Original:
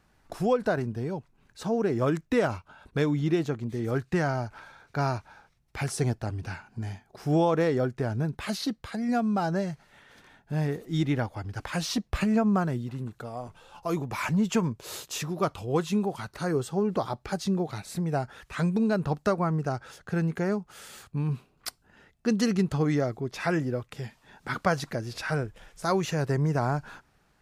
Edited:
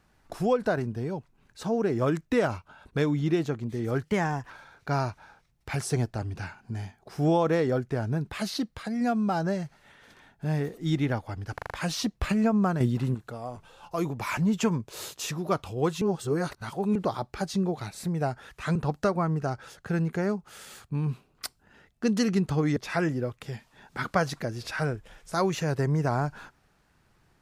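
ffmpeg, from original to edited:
-filter_complex "[0:a]asplit=13[a][b][c][d][e][f][g][h][i][j][k][l][m];[a]atrim=end=4.034[n];[b]atrim=start=4.03:end=4.58,asetpts=PTS-STARTPTS,asetrate=51156,aresample=44100,atrim=end_sample=20909,asetpts=PTS-STARTPTS[o];[c]atrim=start=4.576:end=11.662[p];[d]atrim=start=11.618:end=11.662[q];[e]atrim=start=11.618:end=11.662[r];[f]atrim=start=11.618:end=11.662[s];[g]atrim=start=11.618:end=12.722[t];[h]atrim=start=12.718:end=13.062,asetpts=PTS-STARTPTS,volume=7.5dB[u];[i]atrim=start=13.058:end=15.932[v];[j]atrim=start=15.928:end=16.872,asetpts=PTS-STARTPTS,areverse[w];[k]atrim=start=16.868:end=18.672[x];[l]atrim=start=18.978:end=22.992[y];[m]atrim=start=23.268[z];[n][o]acrossfade=d=0.004:c1=hsin:c2=hsin[aa];[aa][p]acrossfade=d=0.004:c1=hsin:c2=hsin[ab];[ab][q]acrossfade=d=0.004:c1=hsin:c2=hsin[ac];[ac][r]acrossfade=d=0.004:c1=hsin:c2=hsin[ad];[ad][s]acrossfade=d=0.004:c1=hsin:c2=hsin[ae];[ae][t]acrossfade=d=0.004:c1=hsin:c2=hsin[af];[af][u]acrossfade=d=0.004:c1=hsin:c2=hsin[ag];[ag][v]acrossfade=d=0.004:c1=hsin:c2=hsin[ah];[ah][w]acrossfade=d=0.004:c1=hsin:c2=hsin[ai];[ai][x]acrossfade=d=0.004:c1=hsin:c2=hsin[aj];[aj][y]acrossfade=d=0.004:c1=hsin:c2=hsin[ak];[ak][z]acrossfade=d=0.004:c1=hsin:c2=hsin"

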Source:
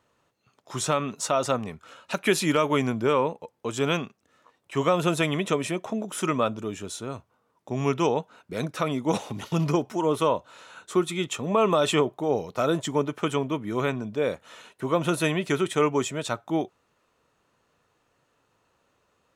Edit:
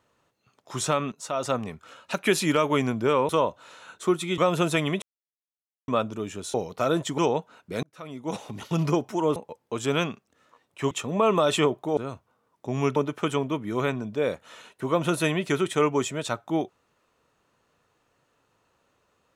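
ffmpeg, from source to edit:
-filter_complex "[0:a]asplit=13[a][b][c][d][e][f][g][h][i][j][k][l][m];[a]atrim=end=1.12,asetpts=PTS-STARTPTS,afade=t=out:st=1.116:d=0.004:c=hsin:silence=0.177828[n];[b]atrim=start=1.12:end=3.292,asetpts=PTS-STARTPTS,afade=t=in:d=0.47:silence=0.177828[o];[c]atrim=start=10.168:end=11.262[p];[d]atrim=start=4.838:end=5.48,asetpts=PTS-STARTPTS,afade=t=out:st=0.638:d=0.004:c=hsin[q];[e]atrim=start=5.48:end=6.34,asetpts=PTS-STARTPTS,volume=0[r];[f]atrim=start=6.34:end=7.002,asetpts=PTS-STARTPTS,afade=t=in:d=0.004:c=hsin[s];[g]atrim=start=12.318:end=12.962[t];[h]atrim=start=7.988:end=8.64,asetpts=PTS-STARTPTS,afade=t=out:st=0.648:d=0.004:c=hsin[u];[i]atrim=start=8.64:end=10.172,asetpts=PTS-STARTPTS,afade=t=in:d=1[v];[j]atrim=start=3.288:end=4.842[w];[k]atrim=start=11.258:end=12.322[x];[l]atrim=start=6.998:end=7.992[y];[m]atrim=start=12.958[z];[n][o]concat=n=2:v=0:a=1[aa];[aa][p]acrossfade=d=0.004:c1=hsin:c2=hsin[ab];[q][r][s]concat=n=3:v=0:a=1[ac];[ab][ac]acrossfade=d=0.004:c1=hsin:c2=hsin[ad];[ad][t]acrossfade=d=0.004:c1=hsin:c2=hsin[ae];[u][v]concat=n=2:v=0:a=1[af];[ae][af]acrossfade=d=0.004:c1=hsin:c2=hsin[ag];[ag][w]acrossfade=d=0.004:c1=hsin:c2=hsin[ah];[ah][x]acrossfade=d=0.004:c1=hsin:c2=hsin[ai];[ai][y]acrossfade=d=0.004:c1=hsin:c2=hsin[aj];[aj][z]acrossfade=d=0.004:c1=hsin:c2=hsin"

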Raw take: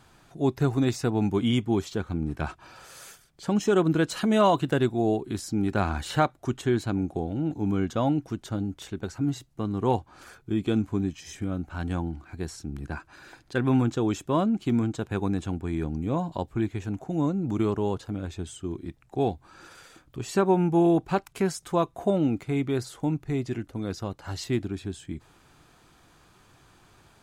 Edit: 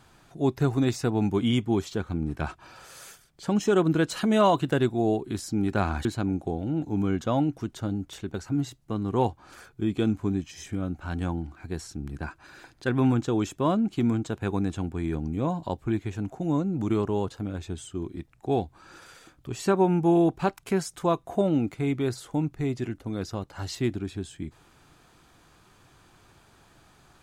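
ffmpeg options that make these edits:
-filter_complex "[0:a]asplit=2[a][b];[a]atrim=end=6.052[c];[b]atrim=start=6.738[d];[c][d]acrossfade=d=0.004:c1=hsin:c2=hsin"

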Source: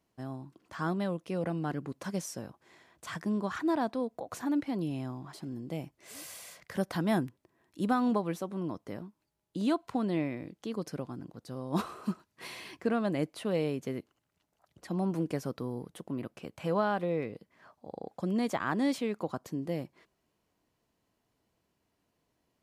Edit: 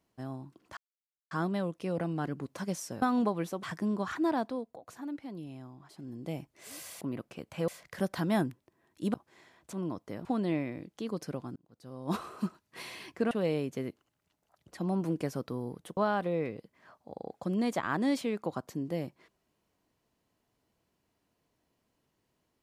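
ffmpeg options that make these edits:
-filter_complex "[0:a]asplit=14[a][b][c][d][e][f][g][h][i][j][k][l][m][n];[a]atrim=end=0.77,asetpts=PTS-STARTPTS,afade=t=out:st=0.766:d=0.004:c=hsin,apad=pad_dur=0.54[o];[b]atrim=start=0.77:end=2.482,asetpts=PTS-STARTPTS,afade=t=in:d=0.004:c=hsin[p];[c]atrim=start=7.908:end=8.522[q];[d]atrim=start=3.068:end=4.22,asetpts=PTS-STARTPTS,afade=t=out:st=0.732:d=0.42:silence=0.354813[r];[e]atrim=start=4.22:end=5.33,asetpts=PTS-STARTPTS,volume=-9dB[s];[f]atrim=start=5.33:end=6.452,asetpts=PTS-STARTPTS,afade=t=in:d=0.42:silence=0.354813[t];[g]atrim=start=16.068:end=16.742[u];[h]atrim=start=6.448:end=7.912[v];[i]atrim=start=2.478:end=3.072[w];[j]atrim=start=8.518:end=9.042[x];[k]atrim=start=9.898:end=11.21,asetpts=PTS-STARTPTS,afade=t=out:st=1.308:d=0.004:c=hsin[y];[l]atrim=start=11.21:end=12.962,asetpts=PTS-STARTPTS,afade=t=in:d=0.69[z];[m]atrim=start=13.408:end=16.072[aa];[n]atrim=start=16.738[ab];[o][p]concat=n=2:v=0:a=1[ac];[ac][q]acrossfade=d=0.004:c1=hsin:c2=hsin[ad];[r][s][t]concat=n=3:v=0:a=1[ae];[ad][ae]acrossfade=d=0.004:c1=hsin:c2=hsin[af];[af][u]acrossfade=d=0.004:c1=hsin:c2=hsin[ag];[ag][v]acrossfade=d=0.004:c1=hsin:c2=hsin[ah];[ah][w]acrossfade=d=0.004:c1=hsin:c2=hsin[ai];[ai][x]acrossfade=d=0.004:c1=hsin:c2=hsin[aj];[y][z]concat=n=2:v=0:a=1[ak];[aj][ak]acrossfade=d=0.004:c1=hsin:c2=hsin[al];[al][aa]acrossfade=d=0.004:c1=hsin:c2=hsin[am];[am][ab]acrossfade=d=0.004:c1=hsin:c2=hsin"

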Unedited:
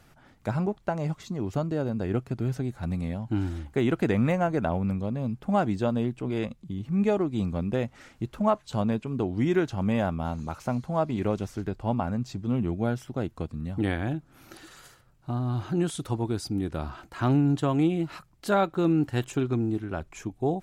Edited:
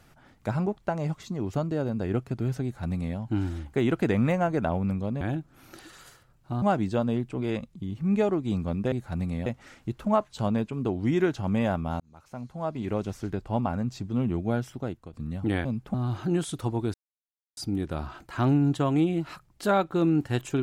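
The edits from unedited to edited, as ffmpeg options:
-filter_complex "[0:a]asplit=10[a][b][c][d][e][f][g][h][i][j];[a]atrim=end=5.212[k];[b]atrim=start=13.988:end=15.402[l];[c]atrim=start=5.498:end=7.802[m];[d]atrim=start=2.628:end=3.172[n];[e]atrim=start=7.798:end=10.34,asetpts=PTS-STARTPTS,afade=t=out:st=2.538:d=0.004:c=hsin[o];[f]atrim=start=10.34:end=13.47,asetpts=PTS-STARTPTS,afade=t=in:d=1.21,afade=t=out:st=2.74:d=0.39:silence=0.177828[p];[g]atrim=start=13.47:end=13.992,asetpts=PTS-STARTPTS,afade=t=in:d=0.004:c=hsin:silence=0.177828[q];[h]atrim=start=5.208:end=5.502[r];[i]atrim=start=15.398:end=16.4,asetpts=PTS-STARTPTS,afade=t=out:st=0.998:d=0.004:c=hsin,apad=pad_dur=0.63[s];[j]atrim=start=16.4,asetpts=PTS-STARTPTS,afade=t=in:d=0.004:c=hsin[t];[k][l]acrossfade=d=0.004:c1=hsin:c2=hsin[u];[u][m]acrossfade=d=0.004:c1=hsin:c2=hsin[v];[v][n]acrossfade=d=0.004:c1=hsin:c2=hsin[w];[o][p][q]concat=n=3:v=0:a=1[x];[w][x]acrossfade=d=0.004:c1=hsin:c2=hsin[y];[y][r]acrossfade=d=0.004:c1=hsin:c2=hsin[z];[s][t]concat=n=2:v=0:a=1[aa];[z][aa]acrossfade=d=0.004:c1=hsin:c2=hsin"

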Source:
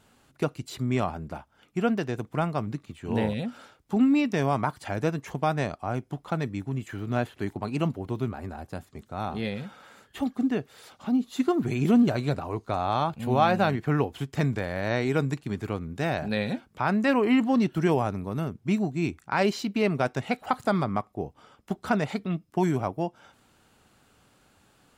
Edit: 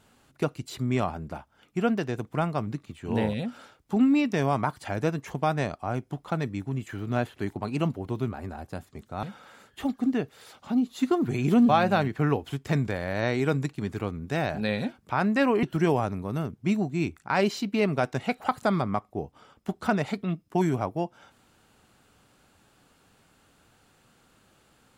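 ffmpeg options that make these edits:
-filter_complex "[0:a]asplit=4[a][b][c][d];[a]atrim=end=9.232[e];[b]atrim=start=9.598:end=12.062[f];[c]atrim=start=13.368:end=17.312[g];[d]atrim=start=17.648[h];[e][f]acrossfade=d=0.004:c1=hsin:c2=hsin[i];[i][g]acrossfade=d=0.004:c1=hsin:c2=hsin[j];[j][h]acrossfade=d=0.004:c1=hsin:c2=hsin"

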